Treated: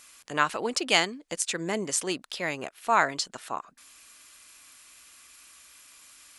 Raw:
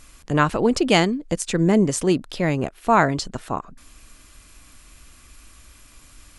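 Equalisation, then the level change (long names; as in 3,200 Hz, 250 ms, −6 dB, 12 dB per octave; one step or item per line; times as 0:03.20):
high-pass filter 1,500 Hz 6 dB per octave
0.0 dB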